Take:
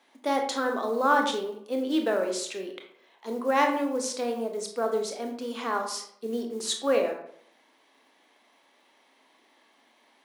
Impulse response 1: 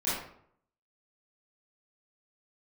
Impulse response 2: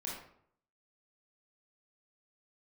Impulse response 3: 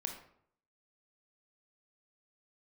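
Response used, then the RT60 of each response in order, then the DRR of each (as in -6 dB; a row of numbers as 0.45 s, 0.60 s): 3; 0.65 s, 0.65 s, 0.65 s; -12.0 dB, -5.0 dB, 3.0 dB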